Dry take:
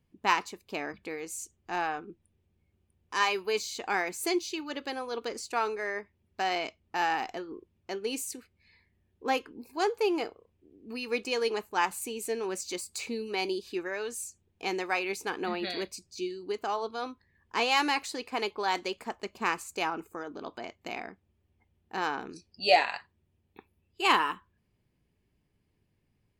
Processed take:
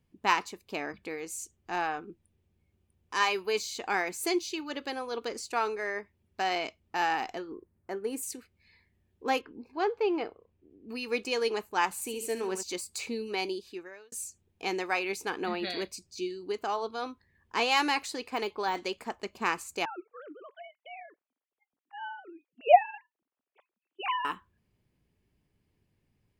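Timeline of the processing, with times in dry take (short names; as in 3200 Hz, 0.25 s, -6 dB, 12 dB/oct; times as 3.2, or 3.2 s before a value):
7.54–8.23 band shelf 4000 Hz -12.5 dB
9.41–10.89 air absorption 230 m
11.92–12.63 flutter echo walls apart 11.9 m, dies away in 0.44 s
13.32–14.12 fade out
18.14–18.82 de-esser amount 100%
19.85–24.25 sine-wave speech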